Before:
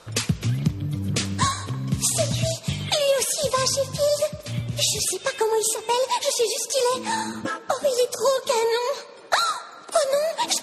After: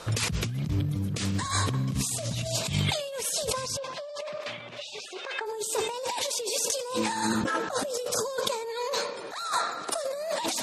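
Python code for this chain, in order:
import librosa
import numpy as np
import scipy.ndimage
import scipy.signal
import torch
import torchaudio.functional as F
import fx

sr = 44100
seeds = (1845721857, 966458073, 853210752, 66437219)

y = fx.over_compress(x, sr, threshold_db=-31.0, ratio=-1.0)
y = fx.bandpass_edges(y, sr, low_hz=620.0, high_hz=2700.0, at=(3.76, 5.45), fade=0.02)
y = fx.sustainer(y, sr, db_per_s=64.0)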